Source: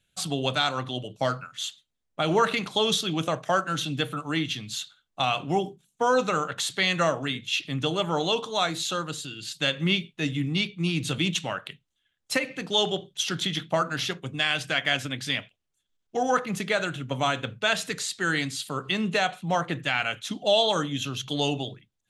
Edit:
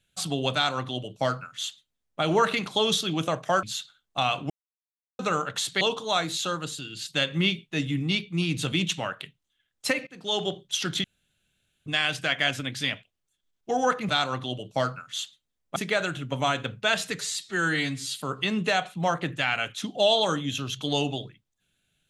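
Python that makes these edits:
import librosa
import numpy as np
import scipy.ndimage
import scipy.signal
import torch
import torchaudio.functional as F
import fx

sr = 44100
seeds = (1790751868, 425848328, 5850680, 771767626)

y = fx.edit(x, sr, fx.duplicate(start_s=0.54, length_s=1.67, to_s=16.55),
    fx.cut(start_s=3.63, length_s=1.02),
    fx.silence(start_s=5.52, length_s=0.69),
    fx.cut(start_s=6.83, length_s=1.44),
    fx.fade_in_from(start_s=12.53, length_s=0.44, floor_db=-21.5),
    fx.room_tone_fill(start_s=13.5, length_s=0.82),
    fx.stretch_span(start_s=17.98, length_s=0.64, factor=1.5), tone=tone)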